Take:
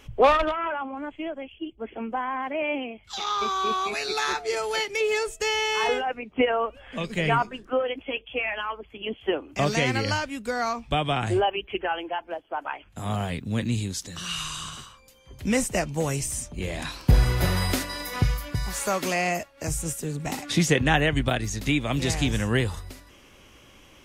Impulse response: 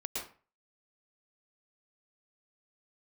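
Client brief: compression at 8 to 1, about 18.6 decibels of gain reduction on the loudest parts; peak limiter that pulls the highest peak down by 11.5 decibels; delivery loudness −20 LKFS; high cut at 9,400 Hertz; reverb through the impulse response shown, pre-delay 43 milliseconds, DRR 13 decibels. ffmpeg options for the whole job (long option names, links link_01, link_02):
-filter_complex "[0:a]lowpass=9400,acompressor=threshold=-32dB:ratio=8,alimiter=level_in=7dB:limit=-24dB:level=0:latency=1,volume=-7dB,asplit=2[link_01][link_02];[1:a]atrim=start_sample=2205,adelay=43[link_03];[link_02][link_03]afir=irnorm=-1:irlink=0,volume=-15dB[link_04];[link_01][link_04]amix=inputs=2:normalize=0,volume=19.5dB"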